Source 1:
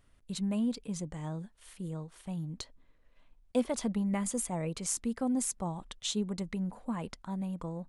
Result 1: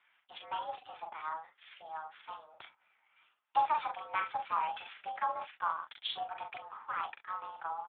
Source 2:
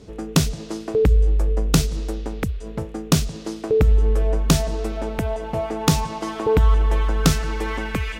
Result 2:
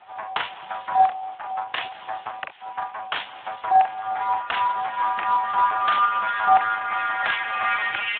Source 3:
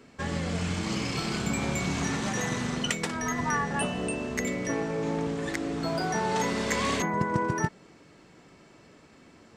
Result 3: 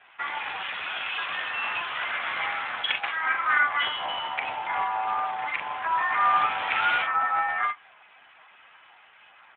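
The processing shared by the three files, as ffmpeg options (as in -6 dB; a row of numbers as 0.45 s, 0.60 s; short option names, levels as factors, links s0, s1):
-filter_complex "[0:a]acontrast=80,asplit=2[s0][s1];[s1]aecho=0:1:41|67:0.596|0.158[s2];[s0][s2]amix=inputs=2:normalize=0,highpass=f=510:t=q:w=0.5412,highpass=f=510:t=q:w=1.307,lowpass=f=3100:t=q:w=0.5176,lowpass=f=3100:t=q:w=0.7071,lowpass=f=3100:t=q:w=1.932,afreqshift=320" -ar 8000 -c:a libspeex -b:a 8k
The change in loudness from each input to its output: -2.5 LU, -1.5 LU, +3.0 LU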